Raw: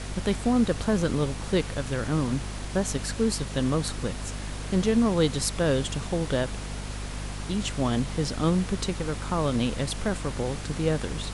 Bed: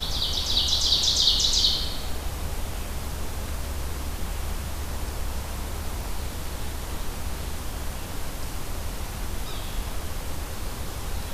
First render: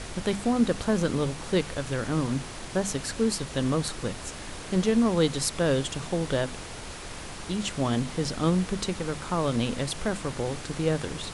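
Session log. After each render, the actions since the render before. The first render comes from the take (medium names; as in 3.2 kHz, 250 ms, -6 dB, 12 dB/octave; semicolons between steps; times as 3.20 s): hum notches 50/100/150/200/250 Hz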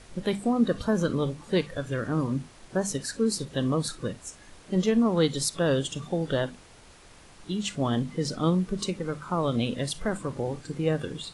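noise print and reduce 13 dB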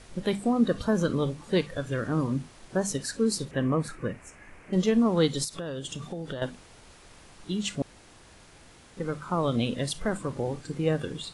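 3.51–4.73 s: resonant high shelf 2.9 kHz -8 dB, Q 3; 5.44–6.42 s: compression 8:1, threshold -31 dBFS; 7.82–8.97 s: room tone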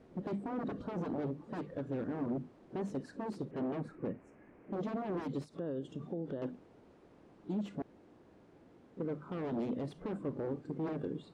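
wavefolder -26.5 dBFS; band-pass filter 310 Hz, Q 1.2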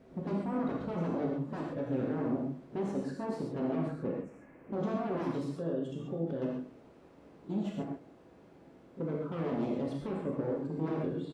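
echo from a far wall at 27 m, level -19 dB; gated-style reverb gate 160 ms flat, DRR -2 dB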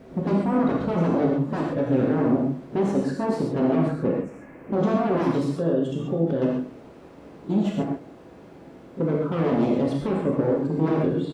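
trim +11.5 dB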